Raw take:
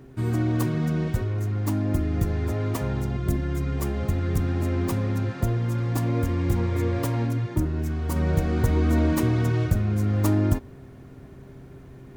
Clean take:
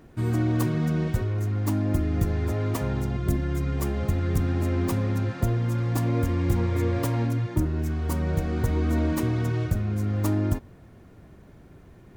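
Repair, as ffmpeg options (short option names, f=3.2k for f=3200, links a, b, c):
-af "bandreject=f=131.5:t=h:w=4,bandreject=f=263:t=h:w=4,bandreject=f=394.5:t=h:w=4,asetnsamples=n=441:p=0,asendcmd='8.16 volume volume -3dB',volume=0dB"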